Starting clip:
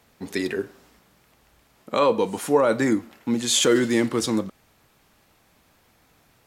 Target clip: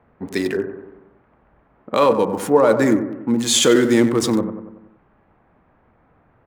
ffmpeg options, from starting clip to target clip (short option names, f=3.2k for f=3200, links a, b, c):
-filter_complex "[0:a]asplit=2[a][b];[b]adelay=94,lowpass=f=3.2k:p=1,volume=-9dB,asplit=2[c][d];[d]adelay=94,lowpass=f=3.2k:p=1,volume=0.54,asplit=2[e][f];[f]adelay=94,lowpass=f=3.2k:p=1,volume=0.54,asplit=2[g][h];[h]adelay=94,lowpass=f=3.2k:p=1,volume=0.54,asplit=2[i][j];[j]adelay=94,lowpass=f=3.2k:p=1,volume=0.54,asplit=2[k][l];[l]adelay=94,lowpass=f=3.2k:p=1,volume=0.54[m];[a][c][e][g][i][k][m]amix=inputs=7:normalize=0,acrossover=split=1800[n][o];[o]aeval=exprs='sgn(val(0))*max(abs(val(0))-0.00891,0)':c=same[p];[n][p]amix=inputs=2:normalize=0,volume=4.5dB"